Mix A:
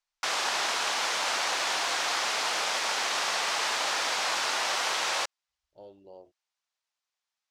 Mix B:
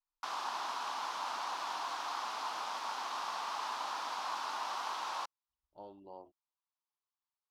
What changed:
background -11.5 dB; master: add graphic EQ 125/250/500/1000/2000/8000 Hz -6/+5/-8/+12/-9/-9 dB

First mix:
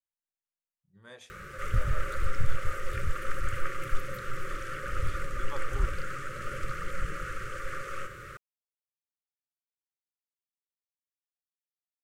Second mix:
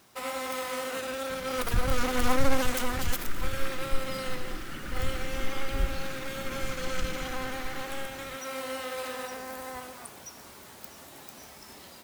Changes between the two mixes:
first sound: unmuted; second sound: add graphic EQ 125/250/1000/2000 Hz -5/+6/-6/+7 dB; master: add graphic EQ 250/500/1000/2000/4000/8000 Hz +10/-9/-4/-9/+7/-7 dB

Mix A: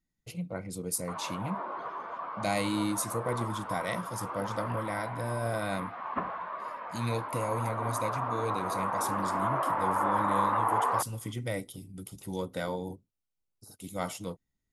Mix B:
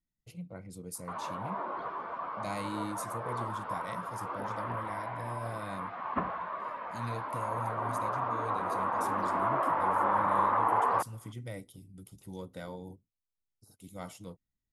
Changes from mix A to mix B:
speech -10.0 dB; master: add bass shelf 210 Hz +6 dB

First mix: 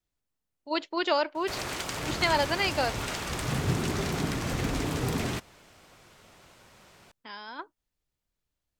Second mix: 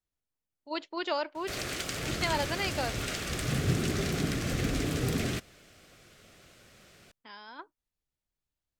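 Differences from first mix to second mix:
speech -5.5 dB; background: add peaking EQ 930 Hz -14 dB 0.45 oct

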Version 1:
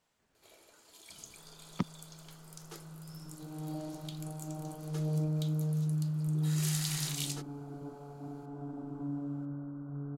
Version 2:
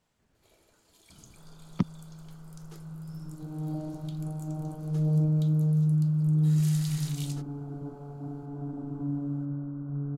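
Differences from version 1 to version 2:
first sound -6.0 dB; master: add bass shelf 260 Hz +10.5 dB

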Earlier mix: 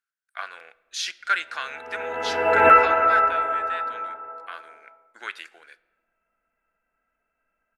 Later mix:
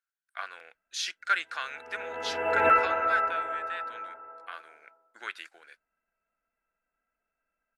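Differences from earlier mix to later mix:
background -3.5 dB; reverb: off

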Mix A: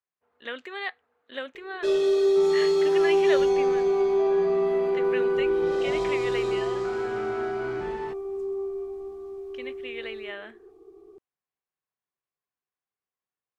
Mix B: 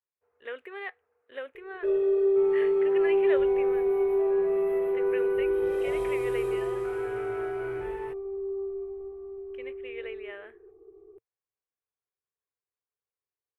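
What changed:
first sound: add low-pass 1.1 kHz 6 dB/octave; second sound: add treble shelf 4.4 kHz +12 dB; master: add FFT filter 110 Hz 0 dB, 220 Hz -17 dB, 450 Hz +2 dB, 650 Hz -6 dB, 2.5 kHz -5 dB, 4.4 kHz -23 dB, 7 kHz -20 dB, 10 kHz -1 dB

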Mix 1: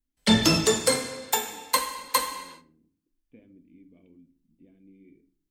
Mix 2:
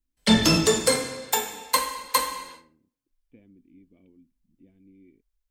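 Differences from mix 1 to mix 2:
speech: send off; background: send +6.0 dB

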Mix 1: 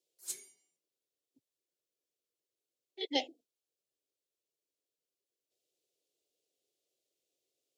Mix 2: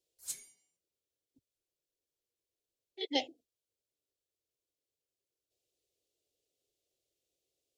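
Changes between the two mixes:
background: add peaking EQ 370 Hz -14 dB 0.3 oct; master: remove high-pass 190 Hz 12 dB/octave

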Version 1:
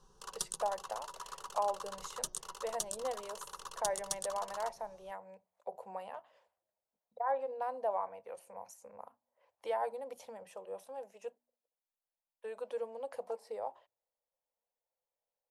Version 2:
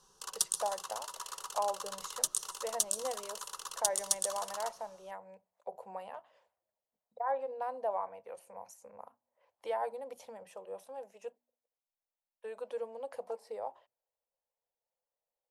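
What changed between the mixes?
background: add tilt EQ +2.5 dB/octave; reverb: on, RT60 1.3 s

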